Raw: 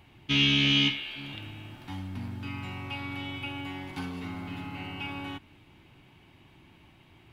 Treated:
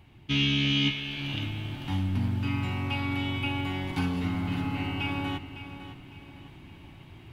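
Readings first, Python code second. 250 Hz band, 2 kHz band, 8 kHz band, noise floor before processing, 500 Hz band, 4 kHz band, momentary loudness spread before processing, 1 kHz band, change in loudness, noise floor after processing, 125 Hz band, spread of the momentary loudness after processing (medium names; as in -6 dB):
+3.5 dB, -0.5 dB, no reading, -58 dBFS, +4.0 dB, -2.5 dB, 19 LU, +4.5 dB, +0.5 dB, -50 dBFS, +6.5 dB, 23 LU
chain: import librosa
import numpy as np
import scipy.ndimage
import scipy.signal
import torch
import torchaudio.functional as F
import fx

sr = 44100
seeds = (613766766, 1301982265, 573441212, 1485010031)

p1 = fx.low_shelf(x, sr, hz=250.0, db=7.0)
p2 = fx.rider(p1, sr, range_db=4, speed_s=0.5)
y = p2 + fx.echo_feedback(p2, sr, ms=556, feedback_pct=36, wet_db=-12, dry=0)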